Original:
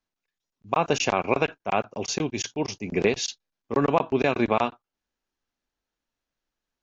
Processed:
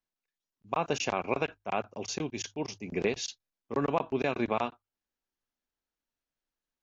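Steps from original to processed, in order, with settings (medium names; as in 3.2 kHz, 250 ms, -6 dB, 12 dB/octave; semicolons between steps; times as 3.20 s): hum notches 50/100 Hz; trim -7 dB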